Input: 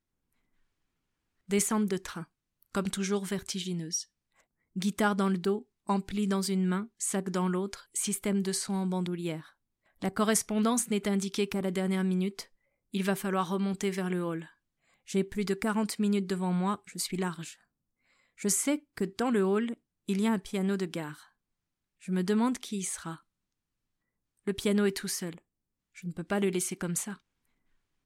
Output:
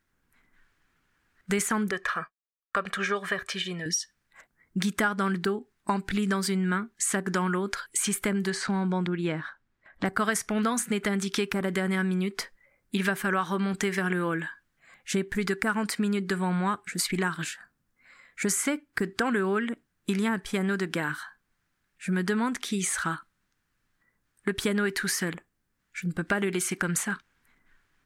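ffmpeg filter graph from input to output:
ffmpeg -i in.wav -filter_complex "[0:a]asettb=1/sr,asplit=3[link_01][link_02][link_03];[link_01]atrim=end=1.914[link_04];[link_02]atrim=start=1.91:end=3.86,asetpts=PTS-STARTPTS,afade=type=in:duration=0.004:curve=qsin,afade=type=out:start_time=1.946:duration=0.004:curve=qsin,agate=range=-33dB:threshold=-50dB:ratio=3:release=100:detection=peak,bass=frequency=250:gain=-14,treble=frequency=4000:gain=-14,aecho=1:1:1.7:0.62,atrim=end_sample=85995[link_05];[link_03]atrim=start=3.856[link_06];[link_04][link_05]acrossfade=duration=0.004:curve1=hsin:curve2=qsin[link_07];[link_07][link_06]acrossfade=duration=0.004:curve1=qsin:curve2=hsin,asettb=1/sr,asplit=3[link_08][link_09][link_10];[link_08]atrim=end=8.504[link_11];[link_09]atrim=start=8.5:end=10.06,asetpts=PTS-STARTPTS,afade=type=in:duration=0.004:curve=qsin,afade=type=out:start_time=1.556:duration=0.004:curve=qsin,lowpass=7800,aemphasis=mode=reproduction:type=cd[link_12];[link_10]atrim=start=10.056[link_13];[link_11][link_12]acrossfade=duration=0.004:curve1=hsin:curve2=qsin[link_14];[link_14][link_13]acrossfade=duration=0.004:curve1=qsin:curve2=hsin,equalizer=frequency=1600:width=1.5:gain=11.5,acompressor=threshold=-33dB:ratio=4,volume=8dB" out.wav

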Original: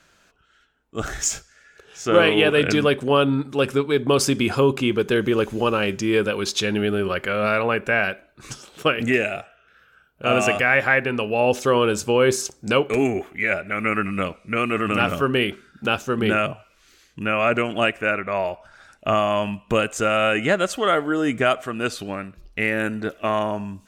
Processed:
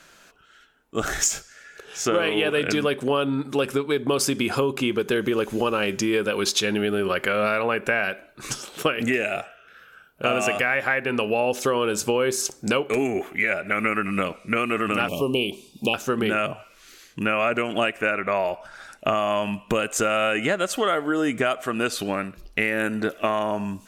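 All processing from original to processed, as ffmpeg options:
ffmpeg -i in.wav -filter_complex "[0:a]asettb=1/sr,asplit=3[link_01][link_02][link_03];[link_01]atrim=end=15.084[link_04];[link_02]atrim=start=15.08:end=15.94,asetpts=PTS-STARTPTS,afade=type=in:duration=0.004:curve=qsin,afade=type=out:start_time=0.856:duration=0.004:curve=qsin,acrossover=split=5000[link_05][link_06];[link_06]acompressor=threshold=-53dB:ratio=4:attack=1:release=60[link_07];[link_05][link_07]amix=inputs=2:normalize=0,asuperstop=centerf=1600:order=12:qfactor=1.2,aemphasis=mode=production:type=cd[link_08];[link_03]atrim=start=15.936[link_09];[link_04][link_08]acrossfade=duration=0.004:curve1=hsin:curve2=qsin[link_10];[link_10][link_09]acrossfade=duration=0.004:curve1=qsin:curve2=hsin,equalizer=frequency=12000:width=1.2:gain=5.5,acompressor=threshold=-25dB:ratio=6,equalizer=frequency=67:width=0.7:gain=-9.5,volume=6dB" out.wav

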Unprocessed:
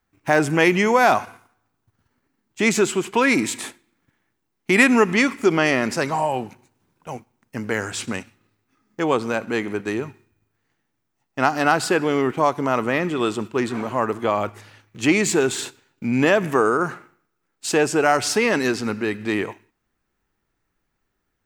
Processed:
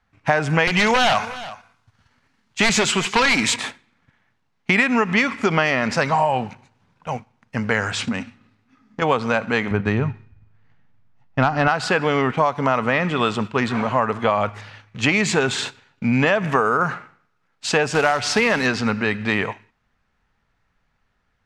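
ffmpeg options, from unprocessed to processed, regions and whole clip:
ffmpeg -i in.wav -filter_complex "[0:a]asettb=1/sr,asplit=3[link_01][link_02][link_03];[link_01]atrim=end=0.674[link_04];[link_02]atrim=start=0.67:end=3.56,asetpts=PTS-STARTPTS,afade=type=in:duration=0.004:curve=qsin,afade=type=out:start_time=2.886:duration=0.004:curve=qsin,highshelf=frequency=2300:gain=10,aeval=exprs='0.251*(abs(mod(val(0)/0.251+3,4)-2)-1)':channel_layout=same,aecho=1:1:361:0.0841,atrim=end_sample=127449[link_05];[link_03]atrim=start=3.556[link_06];[link_04][link_05]acrossfade=duration=0.004:curve1=hsin:curve2=qsin[link_07];[link_07][link_06]acrossfade=duration=0.004:curve1=qsin:curve2=hsin,asettb=1/sr,asplit=3[link_08][link_09][link_10];[link_08]atrim=end=8.044[link_11];[link_09]atrim=start=8.04:end=9.02,asetpts=PTS-STARTPTS,afade=type=in:duration=0.004:curve=qsin,afade=type=out:start_time=0.976:duration=0.004:curve=qsin,equalizer=frequency=250:width_type=o:width=0.55:gain=11.5,acompressor=threshold=-26dB:ratio=3:attack=3.2:release=140:knee=1:detection=peak[link_12];[link_10]atrim=start=9.016[link_13];[link_11][link_12]acrossfade=duration=0.004:curve1=hsin:curve2=qsin[link_14];[link_14][link_13]acrossfade=duration=0.004:curve1=qsin:curve2=hsin,asettb=1/sr,asplit=3[link_15][link_16][link_17];[link_15]atrim=end=9.714[link_18];[link_16]atrim=start=9.71:end=11.68,asetpts=PTS-STARTPTS,afade=type=in:duration=0.004:curve=qsin,afade=type=out:start_time=1.966:duration=0.004:curve=qsin,aemphasis=mode=reproduction:type=bsi,asoftclip=type=hard:threshold=-7.5dB[link_19];[link_17]atrim=start=11.676[link_20];[link_18][link_19]acrossfade=duration=0.004:curve1=hsin:curve2=qsin[link_21];[link_21][link_20]acrossfade=duration=0.004:curve1=qsin:curve2=hsin,asettb=1/sr,asplit=3[link_22][link_23][link_24];[link_22]atrim=end=17.904[link_25];[link_23]atrim=start=17.9:end=18.66,asetpts=PTS-STARTPTS,afade=type=in:duration=0.004:curve=qsin,afade=type=out:start_time=0.756:duration=0.004:curve=qsin,bandreject=frequency=192.8:width_type=h:width=4,bandreject=frequency=385.6:width_type=h:width=4,acrusher=bits=3:mode=log:mix=0:aa=0.000001[link_26];[link_24]atrim=start=18.656[link_27];[link_25][link_26]acrossfade=duration=0.004:curve1=hsin:curve2=qsin[link_28];[link_28][link_27]acrossfade=duration=0.004:curve1=qsin:curve2=hsin,lowpass=4500,equalizer=frequency=340:width_type=o:width=0.54:gain=-14,acompressor=threshold=-21dB:ratio=12,volume=7.5dB" out.wav

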